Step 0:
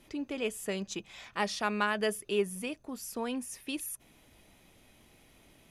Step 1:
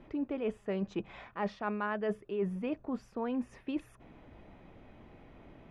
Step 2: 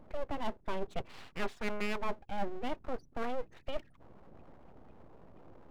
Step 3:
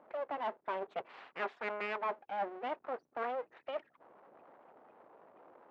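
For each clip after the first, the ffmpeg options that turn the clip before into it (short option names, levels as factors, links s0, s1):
-af "lowpass=1400,areverse,acompressor=threshold=0.0112:ratio=6,areverse,volume=2.51"
-af "afftfilt=real='re*gte(hypot(re,im),0.00251)':imag='im*gte(hypot(re,im),0.00251)':win_size=1024:overlap=0.75,aeval=exprs='abs(val(0))':c=same,volume=1.19"
-af "highpass=540,lowpass=2000,volume=1.5"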